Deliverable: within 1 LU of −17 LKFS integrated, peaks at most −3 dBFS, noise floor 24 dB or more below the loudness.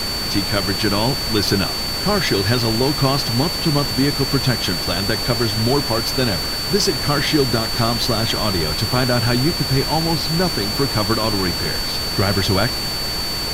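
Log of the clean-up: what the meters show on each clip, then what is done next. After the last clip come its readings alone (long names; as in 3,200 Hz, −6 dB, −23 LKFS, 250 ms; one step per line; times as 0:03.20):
interfering tone 4,500 Hz; level of the tone −23 dBFS; background noise floor −23 dBFS; target noise floor −42 dBFS; integrated loudness −18.0 LKFS; sample peak −4.0 dBFS; target loudness −17.0 LKFS
→ notch filter 4,500 Hz, Q 30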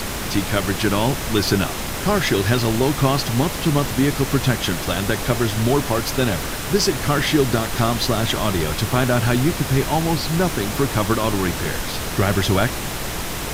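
interfering tone none found; background noise floor −27 dBFS; target noise floor −44 dBFS
→ noise reduction from a noise print 17 dB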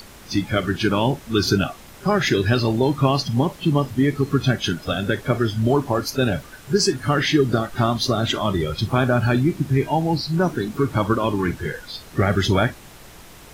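background noise floor −43 dBFS; target noise floor −45 dBFS
→ noise reduction from a noise print 6 dB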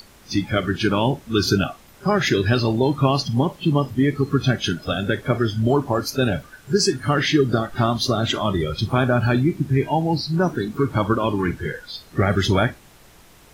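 background noise floor −49 dBFS; integrated loudness −21.0 LKFS; sample peak −5.0 dBFS; target loudness −17.0 LKFS
→ level +4 dB
brickwall limiter −3 dBFS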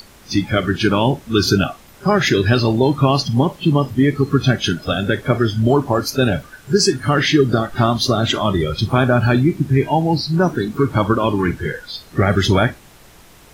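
integrated loudness −17.5 LKFS; sample peak −3.0 dBFS; background noise floor −45 dBFS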